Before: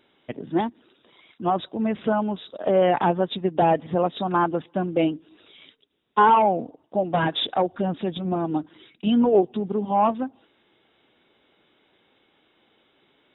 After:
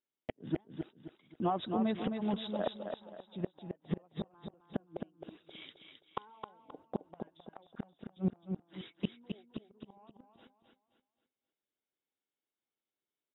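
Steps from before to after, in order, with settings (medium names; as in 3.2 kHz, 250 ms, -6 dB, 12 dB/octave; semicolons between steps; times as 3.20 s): gate -51 dBFS, range -35 dB; 0.63–2.76 s: compression 6:1, threshold -28 dBFS, peak gain reduction 11 dB; inverted gate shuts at -20 dBFS, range -41 dB; feedback delay 264 ms, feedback 36%, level -6 dB; trim -1 dB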